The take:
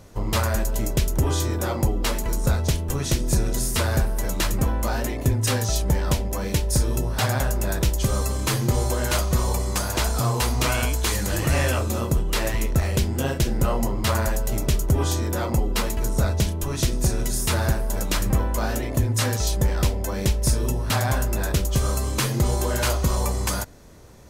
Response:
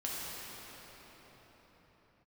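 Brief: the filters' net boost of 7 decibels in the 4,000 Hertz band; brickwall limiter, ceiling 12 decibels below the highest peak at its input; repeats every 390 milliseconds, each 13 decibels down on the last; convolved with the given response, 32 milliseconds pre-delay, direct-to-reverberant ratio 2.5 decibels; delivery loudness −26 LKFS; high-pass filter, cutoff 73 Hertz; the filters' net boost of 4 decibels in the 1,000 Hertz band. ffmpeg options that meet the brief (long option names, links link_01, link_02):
-filter_complex "[0:a]highpass=73,equalizer=frequency=1000:width_type=o:gain=4.5,equalizer=frequency=4000:width_type=o:gain=8.5,alimiter=limit=-18dB:level=0:latency=1,aecho=1:1:390|780|1170:0.224|0.0493|0.0108,asplit=2[link_01][link_02];[1:a]atrim=start_sample=2205,adelay=32[link_03];[link_02][link_03]afir=irnorm=-1:irlink=0,volume=-7dB[link_04];[link_01][link_04]amix=inputs=2:normalize=0,volume=-0.5dB"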